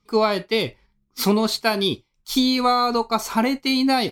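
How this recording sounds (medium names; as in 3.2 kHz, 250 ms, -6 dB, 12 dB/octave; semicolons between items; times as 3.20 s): noise floor -70 dBFS; spectral tilt -4.0 dB/octave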